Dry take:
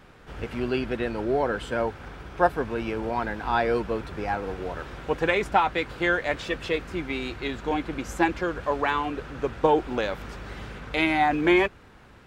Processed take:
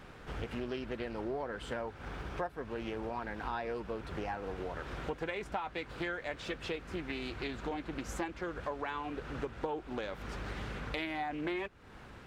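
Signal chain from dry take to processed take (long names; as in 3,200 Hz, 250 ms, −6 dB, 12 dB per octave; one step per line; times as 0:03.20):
downward compressor 5 to 1, threshold −36 dBFS, peak gain reduction 19.5 dB
highs frequency-modulated by the lows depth 0.28 ms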